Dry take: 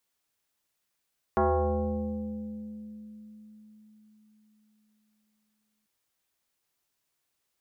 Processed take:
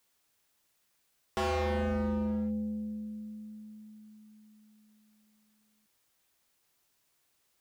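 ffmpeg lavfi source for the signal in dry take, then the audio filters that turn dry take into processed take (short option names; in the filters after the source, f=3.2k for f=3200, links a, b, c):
-f lavfi -i "aevalsrc='0.1*pow(10,-3*t/4.53)*sin(2*PI*214*t+3.3*pow(10,-3*t/3.68)*sin(2*PI*1.37*214*t))':d=4.49:s=44100"
-af "acontrast=44,asoftclip=type=hard:threshold=-29.5dB"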